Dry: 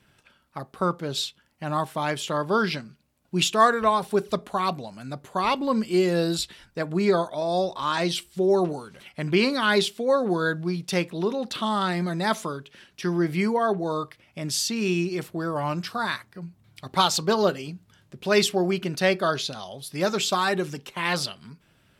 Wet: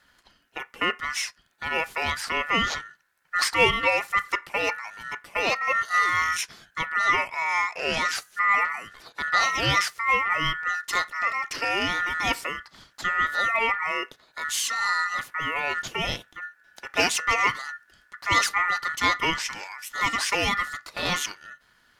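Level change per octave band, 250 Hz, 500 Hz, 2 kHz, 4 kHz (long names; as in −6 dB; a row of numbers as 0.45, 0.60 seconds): −12.5, −9.0, +7.5, +0.5 decibels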